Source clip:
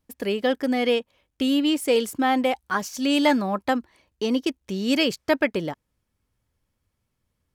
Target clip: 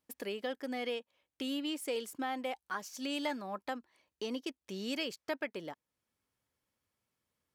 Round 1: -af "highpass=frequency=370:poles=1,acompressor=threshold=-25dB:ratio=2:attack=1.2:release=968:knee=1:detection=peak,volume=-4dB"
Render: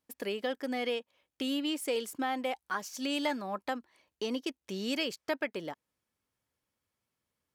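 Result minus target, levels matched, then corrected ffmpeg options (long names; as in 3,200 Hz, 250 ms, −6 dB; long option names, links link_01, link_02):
downward compressor: peak gain reduction −4 dB
-af "highpass=frequency=370:poles=1,acompressor=threshold=-33dB:ratio=2:attack=1.2:release=968:knee=1:detection=peak,volume=-4dB"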